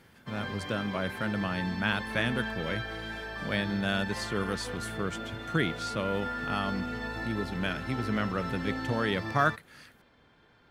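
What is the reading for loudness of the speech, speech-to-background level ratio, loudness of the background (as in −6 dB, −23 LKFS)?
−32.5 LKFS, 4.5 dB, −37.0 LKFS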